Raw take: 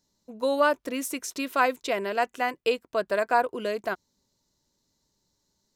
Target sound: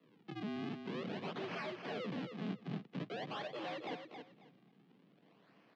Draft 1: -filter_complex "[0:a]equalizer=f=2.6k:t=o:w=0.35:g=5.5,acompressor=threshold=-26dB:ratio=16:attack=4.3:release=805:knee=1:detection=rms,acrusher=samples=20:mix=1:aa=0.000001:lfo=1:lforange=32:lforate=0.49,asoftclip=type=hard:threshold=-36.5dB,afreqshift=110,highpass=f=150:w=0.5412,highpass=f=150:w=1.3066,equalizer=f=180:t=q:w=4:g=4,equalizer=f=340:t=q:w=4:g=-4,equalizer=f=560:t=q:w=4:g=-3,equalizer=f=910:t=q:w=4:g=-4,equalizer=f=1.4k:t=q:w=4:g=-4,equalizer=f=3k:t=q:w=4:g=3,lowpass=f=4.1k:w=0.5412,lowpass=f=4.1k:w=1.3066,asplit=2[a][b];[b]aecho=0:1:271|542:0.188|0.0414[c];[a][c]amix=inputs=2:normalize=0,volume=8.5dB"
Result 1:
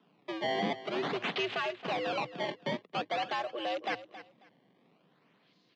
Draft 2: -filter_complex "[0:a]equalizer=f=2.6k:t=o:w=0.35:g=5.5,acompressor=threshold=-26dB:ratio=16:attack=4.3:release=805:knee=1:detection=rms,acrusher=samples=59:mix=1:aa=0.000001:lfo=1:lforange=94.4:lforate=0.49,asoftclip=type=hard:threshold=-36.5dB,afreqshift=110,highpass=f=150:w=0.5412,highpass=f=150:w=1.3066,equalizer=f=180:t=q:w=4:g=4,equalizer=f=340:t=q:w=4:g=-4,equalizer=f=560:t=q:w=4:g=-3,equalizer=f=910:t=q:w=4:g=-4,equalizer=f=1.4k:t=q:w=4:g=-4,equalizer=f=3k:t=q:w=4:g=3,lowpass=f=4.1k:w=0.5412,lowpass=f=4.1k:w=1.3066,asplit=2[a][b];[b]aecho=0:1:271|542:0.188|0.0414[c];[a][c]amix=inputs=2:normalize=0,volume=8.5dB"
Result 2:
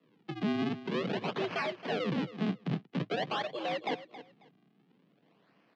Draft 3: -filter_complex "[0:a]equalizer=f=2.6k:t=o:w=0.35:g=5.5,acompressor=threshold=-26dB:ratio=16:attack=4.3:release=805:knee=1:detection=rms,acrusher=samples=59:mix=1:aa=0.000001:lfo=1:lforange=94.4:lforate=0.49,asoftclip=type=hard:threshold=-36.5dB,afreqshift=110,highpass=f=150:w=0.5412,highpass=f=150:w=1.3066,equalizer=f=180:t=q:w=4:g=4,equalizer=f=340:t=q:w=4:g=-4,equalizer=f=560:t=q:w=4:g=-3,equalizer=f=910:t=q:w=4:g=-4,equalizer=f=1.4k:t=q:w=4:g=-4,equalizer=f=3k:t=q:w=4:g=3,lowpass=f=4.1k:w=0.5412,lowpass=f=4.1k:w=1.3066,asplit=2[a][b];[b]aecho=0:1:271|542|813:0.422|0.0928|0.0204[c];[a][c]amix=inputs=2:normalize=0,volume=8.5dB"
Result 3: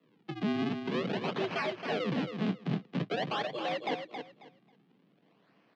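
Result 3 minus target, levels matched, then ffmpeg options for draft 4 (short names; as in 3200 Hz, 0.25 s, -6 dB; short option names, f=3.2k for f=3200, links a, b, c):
hard clip: distortion -4 dB
-filter_complex "[0:a]equalizer=f=2.6k:t=o:w=0.35:g=5.5,acompressor=threshold=-26dB:ratio=16:attack=4.3:release=805:knee=1:detection=rms,acrusher=samples=59:mix=1:aa=0.000001:lfo=1:lforange=94.4:lforate=0.49,asoftclip=type=hard:threshold=-48dB,afreqshift=110,highpass=f=150:w=0.5412,highpass=f=150:w=1.3066,equalizer=f=180:t=q:w=4:g=4,equalizer=f=340:t=q:w=4:g=-4,equalizer=f=560:t=q:w=4:g=-3,equalizer=f=910:t=q:w=4:g=-4,equalizer=f=1.4k:t=q:w=4:g=-4,equalizer=f=3k:t=q:w=4:g=3,lowpass=f=4.1k:w=0.5412,lowpass=f=4.1k:w=1.3066,asplit=2[a][b];[b]aecho=0:1:271|542|813:0.422|0.0928|0.0204[c];[a][c]amix=inputs=2:normalize=0,volume=8.5dB"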